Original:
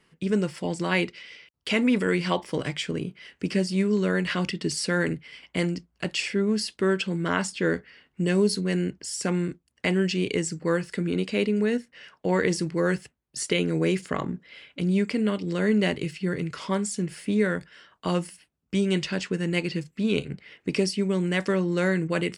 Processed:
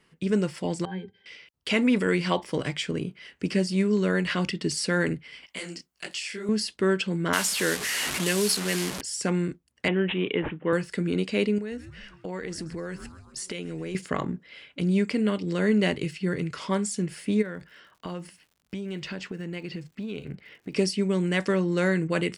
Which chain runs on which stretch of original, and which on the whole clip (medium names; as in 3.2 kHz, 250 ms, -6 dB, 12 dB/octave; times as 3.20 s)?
0.85–1.26 s: upward compressor, threshold -35 dBFS + pitch-class resonator G, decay 0.11 s
5.46–6.49 s: tilt EQ +3.5 dB/octave + compression, threshold -26 dBFS + detune thickener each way 59 cents
7.33–9.01 s: one-bit delta coder 64 kbps, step -27.5 dBFS + tilt EQ +2.5 dB/octave + three bands compressed up and down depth 40%
9.88–10.73 s: high-pass 180 Hz + careless resampling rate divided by 6×, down none, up filtered
11.58–13.95 s: frequency-shifting echo 131 ms, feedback 57%, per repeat -140 Hz, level -20 dB + compression 4:1, threshold -32 dBFS
17.41–20.75 s: low-pass 3.7 kHz 6 dB/octave + compression 5:1, threshold -31 dBFS + crackle 110 per s -51 dBFS
whole clip: none